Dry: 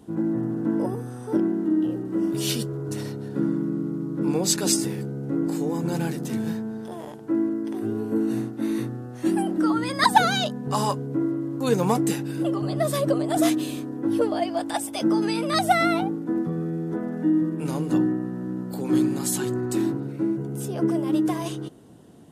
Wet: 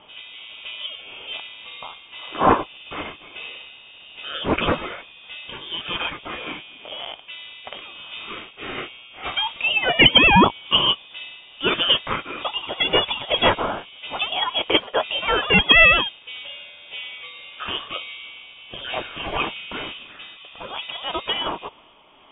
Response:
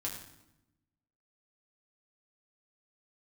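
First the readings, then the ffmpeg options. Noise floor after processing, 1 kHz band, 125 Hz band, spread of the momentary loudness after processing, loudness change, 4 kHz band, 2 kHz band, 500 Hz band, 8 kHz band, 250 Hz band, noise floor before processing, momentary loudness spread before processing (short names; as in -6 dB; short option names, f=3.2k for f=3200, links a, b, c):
-47 dBFS, +3.0 dB, -5.0 dB, 21 LU, +5.5 dB, +14.0 dB, +12.5 dB, -0.5 dB, under -40 dB, -8.0 dB, -37 dBFS, 8 LU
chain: -af "highpass=f=900:w=0.5412,highpass=f=900:w=1.3066,tremolo=f=1.7:d=0.3,aexciter=amount=4.9:drive=5.7:freq=3.1k,lowpass=f=3.4k:t=q:w=0.5098,lowpass=f=3.4k:t=q:w=0.6013,lowpass=f=3.4k:t=q:w=0.9,lowpass=f=3.4k:t=q:w=2.563,afreqshift=-4000,alimiter=level_in=14dB:limit=-1dB:release=50:level=0:latency=1,volume=-1dB"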